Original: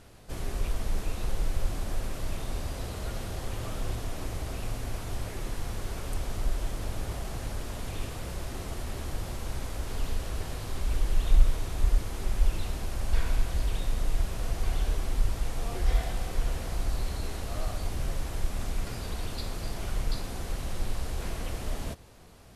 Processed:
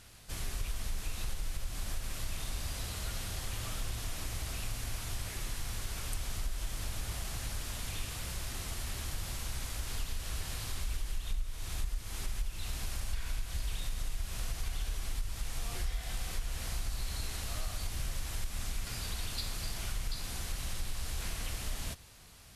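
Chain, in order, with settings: passive tone stack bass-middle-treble 5-5-5; compressor 6:1, threshold -41 dBFS, peak gain reduction 15 dB; gain +10.5 dB

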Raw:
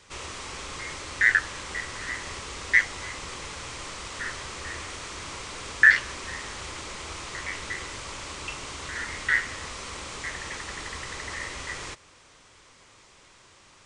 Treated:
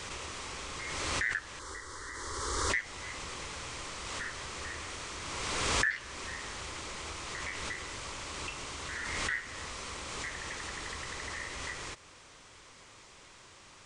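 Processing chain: compressor 2:1, threshold -41 dBFS, peak gain reduction 16.5 dB; 1.59–2.7 fixed phaser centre 690 Hz, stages 6; backwards sustainer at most 23 dB/s

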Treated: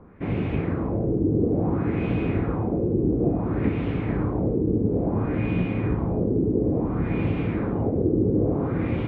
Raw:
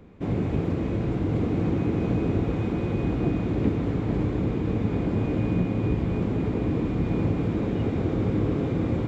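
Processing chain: LFO low-pass sine 0.58 Hz 380–2800 Hz

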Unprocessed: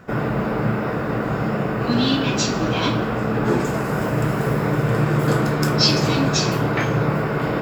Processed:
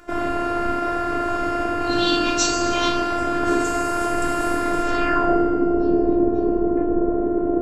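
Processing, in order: low-pass sweep 9500 Hz -> 420 Hz, 4.81–5.39; robotiser 347 Hz; FDN reverb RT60 2.2 s, low-frequency decay 0.7×, high-frequency decay 0.7×, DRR 3 dB; gain +1.5 dB

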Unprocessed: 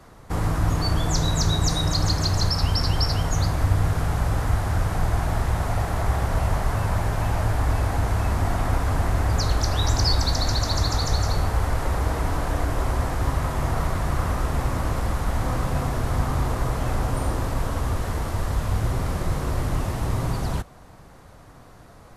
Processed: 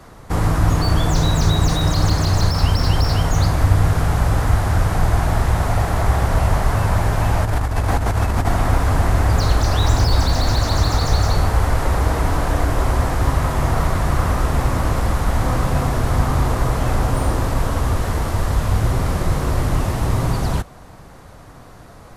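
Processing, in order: 7.45–8.49 negative-ratio compressor -23 dBFS, ratio -0.5; slew limiter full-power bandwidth 110 Hz; gain +6 dB

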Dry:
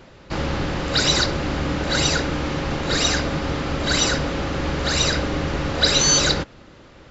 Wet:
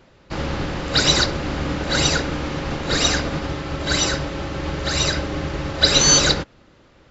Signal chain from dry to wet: 3.47–5.91 notch comb 240 Hz; upward expander 1.5:1, over -34 dBFS; gain +3.5 dB

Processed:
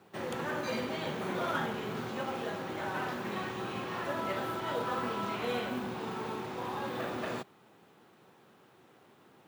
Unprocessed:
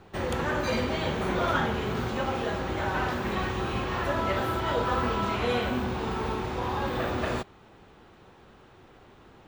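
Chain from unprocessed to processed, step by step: HPF 130 Hz 24 dB/oct; companded quantiser 6-bit; gain -6.5 dB

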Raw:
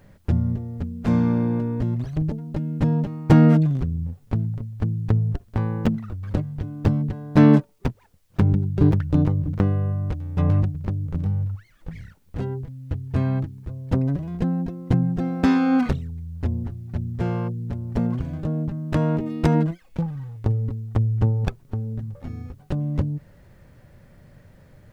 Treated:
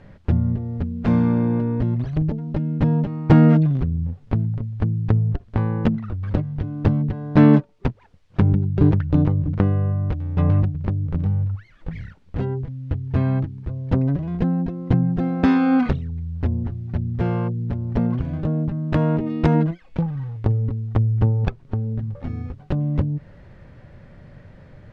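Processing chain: LPF 3800 Hz 12 dB/oct; in parallel at -1 dB: compressor, threshold -29 dBFS, peak gain reduction 18.5 dB

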